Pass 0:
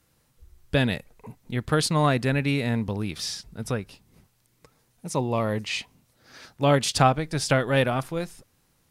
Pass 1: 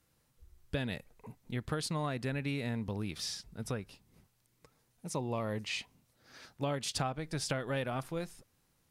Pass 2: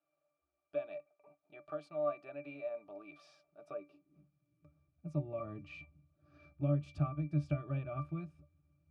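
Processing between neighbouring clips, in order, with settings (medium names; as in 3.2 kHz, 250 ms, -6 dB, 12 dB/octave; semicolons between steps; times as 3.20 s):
compression 6:1, threshold -24 dBFS, peak gain reduction 10.5 dB; trim -7 dB
pitch-class resonator D, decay 0.16 s; high-pass sweep 640 Hz -> 77 Hz, 3.66–4.73 s; trim +7 dB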